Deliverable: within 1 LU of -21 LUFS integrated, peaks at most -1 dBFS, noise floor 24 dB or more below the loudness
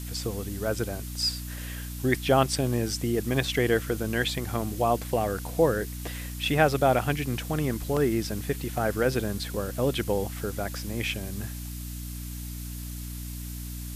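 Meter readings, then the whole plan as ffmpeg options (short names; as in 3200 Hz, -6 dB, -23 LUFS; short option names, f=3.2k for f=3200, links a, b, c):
hum 60 Hz; harmonics up to 300 Hz; hum level -35 dBFS; noise floor -37 dBFS; noise floor target -53 dBFS; loudness -28.5 LUFS; peak -6.5 dBFS; loudness target -21.0 LUFS
-> -af "bandreject=f=60:t=h:w=4,bandreject=f=120:t=h:w=4,bandreject=f=180:t=h:w=4,bandreject=f=240:t=h:w=4,bandreject=f=300:t=h:w=4"
-af "afftdn=nr=16:nf=-37"
-af "volume=7.5dB,alimiter=limit=-1dB:level=0:latency=1"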